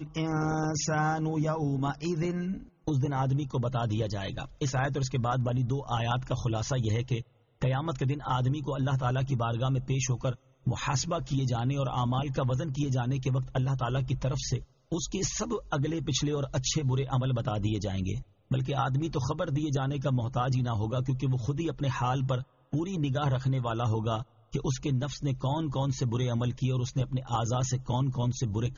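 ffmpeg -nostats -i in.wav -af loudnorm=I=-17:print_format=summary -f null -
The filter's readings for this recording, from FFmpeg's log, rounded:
Input Integrated:    -30.3 LUFS
Input True Peak:     -15.7 dBTP
Input LRA:             0.8 LU
Input Threshold:     -40.3 LUFS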